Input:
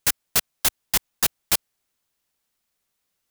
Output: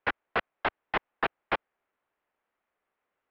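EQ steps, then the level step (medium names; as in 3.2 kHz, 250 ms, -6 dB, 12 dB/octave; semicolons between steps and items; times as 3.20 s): Savitzky-Golay filter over 15 samples; distance through air 380 m; three-band isolator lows -15 dB, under 320 Hz, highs -22 dB, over 2.6 kHz; +6.0 dB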